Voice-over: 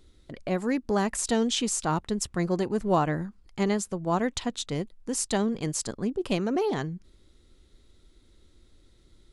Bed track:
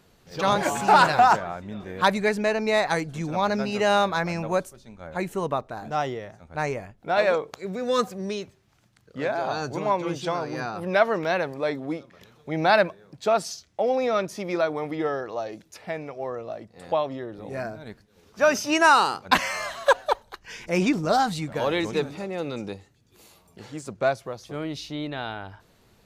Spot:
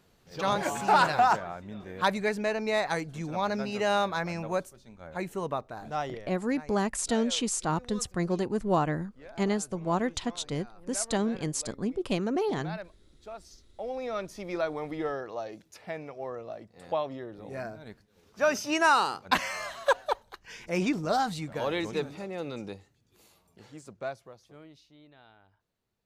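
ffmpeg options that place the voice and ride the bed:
ffmpeg -i stem1.wav -i stem2.wav -filter_complex "[0:a]adelay=5800,volume=-2dB[link_01];[1:a]volume=10.5dB,afade=type=out:start_time=5.95:duration=0.7:silence=0.158489,afade=type=in:start_time=13.42:duration=1.31:silence=0.158489,afade=type=out:start_time=22.74:duration=2.11:silence=0.112202[link_02];[link_01][link_02]amix=inputs=2:normalize=0" out.wav

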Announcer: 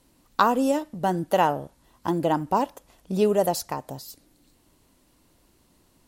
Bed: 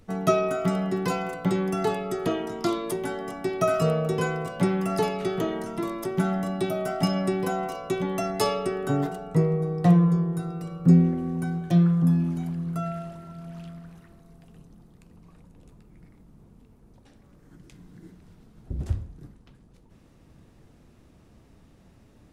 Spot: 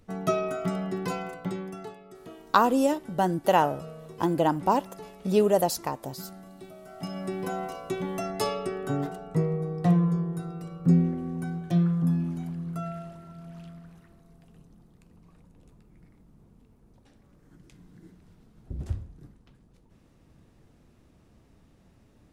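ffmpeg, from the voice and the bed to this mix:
ffmpeg -i stem1.wav -i stem2.wav -filter_complex "[0:a]adelay=2150,volume=-0.5dB[link_01];[1:a]volume=10.5dB,afade=type=out:start_time=1.18:duration=0.77:silence=0.188365,afade=type=in:start_time=6.87:duration=0.69:silence=0.177828[link_02];[link_01][link_02]amix=inputs=2:normalize=0" out.wav

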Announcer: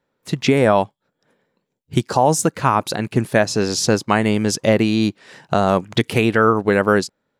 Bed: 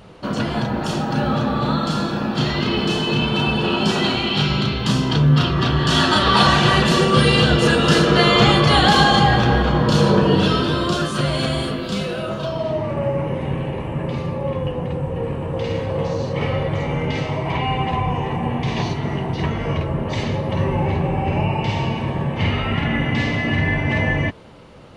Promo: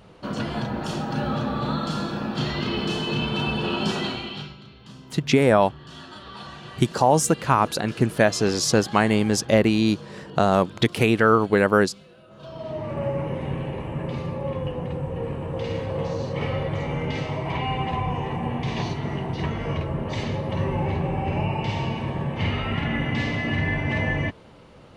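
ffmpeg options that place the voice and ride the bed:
ffmpeg -i stem1.wav -i stem2.wav -filter_complex "[0:a]adelay=4850,volume=-2.5dB[link_01];[1:a]volume=14.5dB,afade=type=out:start_time=3.87:duration=0.69:silence=0.105925,afade=type=in:start_time=12.3:duration=0.73:silence=0.0944061[link_02];[link_01][link_02]amix=inputs=2:normalize=0" out.wav

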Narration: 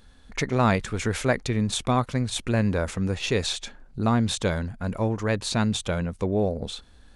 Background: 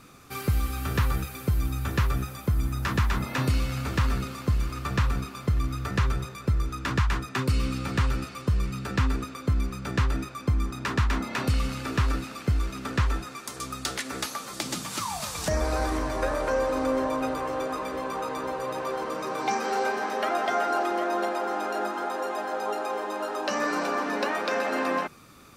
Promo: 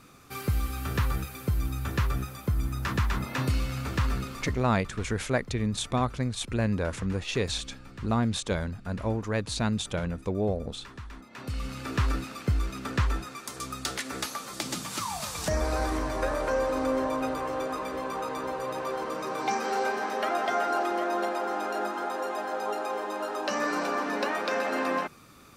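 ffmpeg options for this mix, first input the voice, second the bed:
ffmpeg -i stem1.wav -i stem2.wav -filter_complex "[0:a]adelay=4050,volume=-4dB[link_01];[1:a]volume=14dB,afade=type=out:start_time=4.39:duration=0.22:silence=0.16788,afade=type=in:start_time=11.3:duration=0.74:silence=0.149624[link_02];[link_01][link_02]amix=inputs=2:normalize=0" out.wav

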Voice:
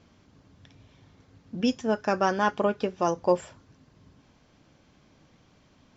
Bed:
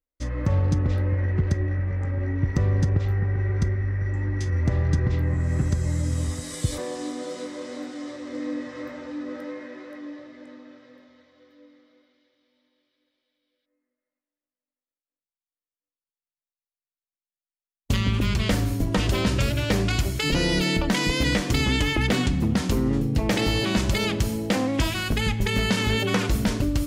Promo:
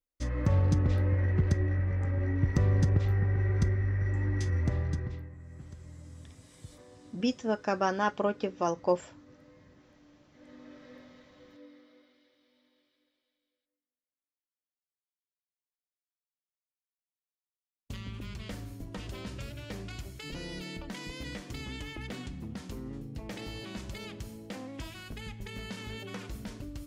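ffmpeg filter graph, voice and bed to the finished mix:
ffmpeg -i stem1.wav -i stem2.wav -filter_complex "[0:a]adelay=5600,volume=-4dB[link_01];[1:a]volume=20dB,afade=type=out:start_time=4.39:duration=0.91:silence=0.1,afade=type=in:start_time=10.29:duration=0.67:silence=0.0668344,afade=type=out:start_time=12.77:duration=1.05:silence=0.125893[link_02];[link_01][link_02]amix=inputs=2:normalize=0" out.wav

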